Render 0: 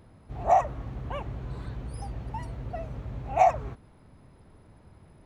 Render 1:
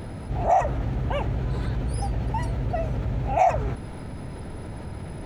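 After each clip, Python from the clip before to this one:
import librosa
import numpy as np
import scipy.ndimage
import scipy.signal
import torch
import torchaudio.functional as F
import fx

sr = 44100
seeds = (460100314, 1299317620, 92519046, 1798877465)

y = fx.notch(x, sr, hz=1100.0, q=6.9)
y = fx.env_flatten(y, sr, amount_pct=50)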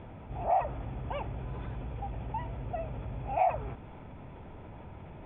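y = scipy.signal.sosfilt(scipy.signal.cheby1(6, 6, 3500.0, 'lowpass', fs=sr, output='sos'), x)
y = y * librosa.db_to_amplitude(-6.0)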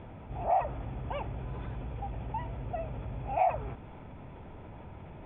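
y = x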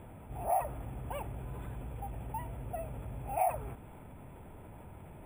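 y = np.repeat(scipy.signal.resample_poly(x, 1, 4), 4)[:len(x)]
y = y * librosa.db_to_amplitude(-3.5)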